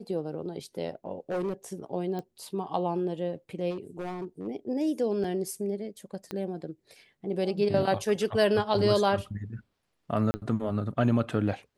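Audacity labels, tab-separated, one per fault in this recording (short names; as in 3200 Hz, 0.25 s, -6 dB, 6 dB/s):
1.300000	1.540000	clipped -26.5 dBFS
2.190000	2.190000	pop -24 dBFS
3.700000	4.480000	clipped -30.5 dBFS
5.240000	5.240000	gap 3.2 ms
6.310000	6.310000	pop -21 dBFS
10.310000	10.340000	gap 30 ms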